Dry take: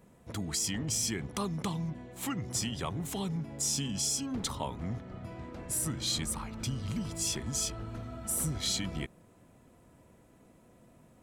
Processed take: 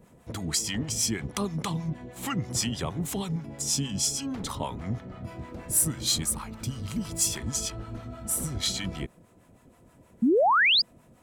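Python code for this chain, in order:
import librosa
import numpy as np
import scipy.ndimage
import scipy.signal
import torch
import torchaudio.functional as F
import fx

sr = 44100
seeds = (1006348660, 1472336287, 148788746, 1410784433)

y = fx.high_shelf(x, sr, hz=9700.0, db=11.0, at=(5.27, 7.38))
y = fx.rider(y, sr, range_db=4, speed_s=2.0)
y = fx.harmonic_tremolo(y, sr, hz=6.3, depth_pct=70, crossover_hz=650.0)
y = fx.spec_paint(y, sr, seeds[0], shape='rise', start_s=10.22, length_s=0.6, low_hz=210.0, high_hz=5100.0, level_db=-26.0)
y = F.gain(torch.from_numpy(y), 5.5).numpy()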